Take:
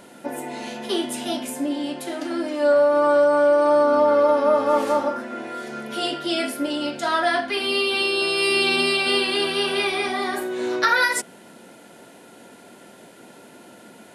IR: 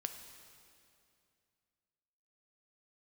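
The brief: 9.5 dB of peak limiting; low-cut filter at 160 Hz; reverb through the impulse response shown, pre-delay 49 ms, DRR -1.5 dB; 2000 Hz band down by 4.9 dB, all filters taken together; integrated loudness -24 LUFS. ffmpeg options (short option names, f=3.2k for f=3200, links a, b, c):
-filter_complex "[0:a]highpass=160,equalizer=f=2k:t=o:g=-7.5,alimiter=limit=-18dB:level=0:latency=1,asplit=2[a][b];[1:a]atrim=start_sample=2205,adelay=49[c];[b][c]afir=irnorm=-1:irlink=0,volume=3dB[d];[a][d]amix=inputs=2:normalize=0,volume=-1dB"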